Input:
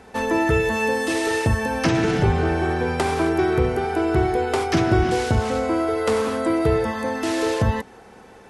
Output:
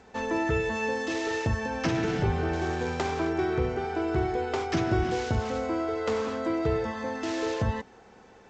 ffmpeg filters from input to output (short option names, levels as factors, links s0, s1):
-filter_complex "[0:a]asettb=1/sr,asplit=3[s0][s1][s2];[s0]atrim=end=2.534[s3];[s1]atrim=start=2.53:end=3.11,asetpts=PTS-STARTPTS,afade=t=in:d=0.004:c=qsin,afade=t=out:st=0.576:d=0.004:c=qsin,acrusher=bits=3:mode=log:mix=0:aa=0.000001[s4];[s2]atrim=start=3.106[s5];[s3][s4]acrossfade=d=0.004:c1=hsin:c2=qsin[s6];[s6][s5]acrossfade=d=0.004:c1=qsin:c2=hsin,volume=0.422" -ar 16000 -c:a g722